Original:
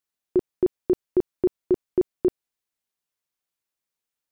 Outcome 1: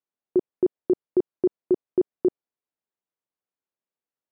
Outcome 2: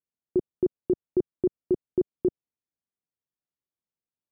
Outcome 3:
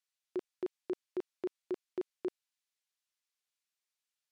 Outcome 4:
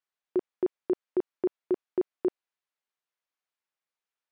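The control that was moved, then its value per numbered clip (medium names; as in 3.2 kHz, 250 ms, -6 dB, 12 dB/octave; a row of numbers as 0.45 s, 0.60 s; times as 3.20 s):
band-pass filter, frequency: 410 Hz, 150 Hz, 4.1 kHz, 1.3 kHz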